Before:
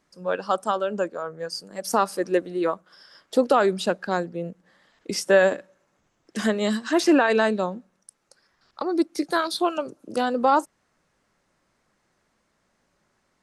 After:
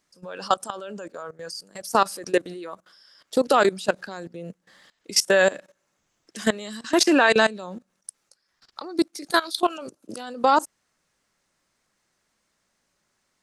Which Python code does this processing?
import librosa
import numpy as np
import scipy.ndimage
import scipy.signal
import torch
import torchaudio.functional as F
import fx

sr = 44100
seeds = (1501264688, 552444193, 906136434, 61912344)

y = fx.high_shelf(x, sr, hz=2300.0, db=11.0)
y = fx.level_steps(y, sr, step_db=19)
y = y * 10.0 ** (2.5 / 20.0)